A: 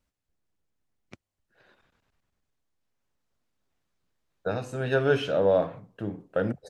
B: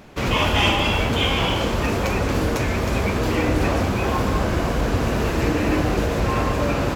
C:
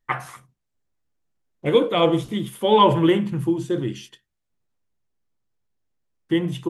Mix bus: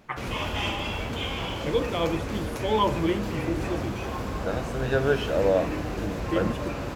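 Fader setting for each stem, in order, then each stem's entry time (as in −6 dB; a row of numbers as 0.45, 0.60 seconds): −0.5, −10.5, −8.5 decibels; 0.00, 0.00, 0.00 seconds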